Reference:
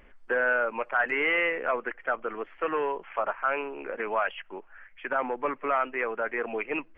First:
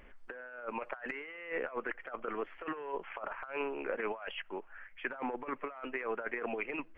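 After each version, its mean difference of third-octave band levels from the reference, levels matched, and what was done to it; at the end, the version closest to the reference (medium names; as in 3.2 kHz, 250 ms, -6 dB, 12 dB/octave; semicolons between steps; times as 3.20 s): 5.5 dB: compressor with a negative ratio -32 dBFS, ratio -0.5; trim -5.5 dB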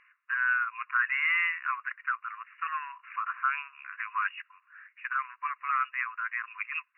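12.0 dB: brick-wall FIR band-pass 990–2900 Hz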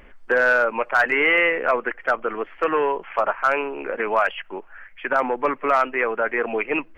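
1.0 dB: hard clipper -17.5 dBFS, distortion -29 dB; trim +7.5 dB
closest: third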